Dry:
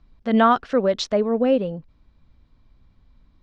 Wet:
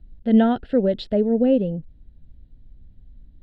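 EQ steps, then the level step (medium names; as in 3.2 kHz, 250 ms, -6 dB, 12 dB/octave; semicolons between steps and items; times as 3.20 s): tilt EQ -2 dB/octave; peaking EQ 2.3 kHz -11.5 dB 0.27 oct; static phaser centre 2.7 kHz, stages 4; 0.0 dB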